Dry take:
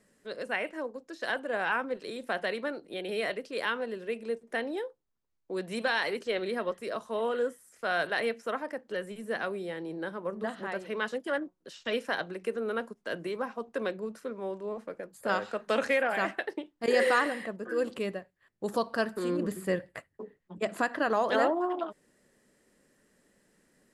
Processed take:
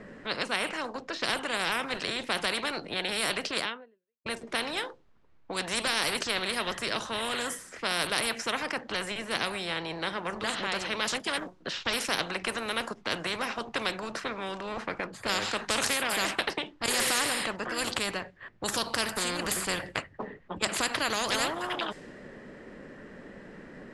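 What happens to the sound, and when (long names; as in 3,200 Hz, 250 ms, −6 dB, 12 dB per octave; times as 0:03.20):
0:03.58–0:04.26: fade out exponential
whole clip: low-pass that shuts in the quiet parts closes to 2,200 Hz, open at −26 dBFS; every bin compressed towards the loudest bin 4 to 1; level +4 dB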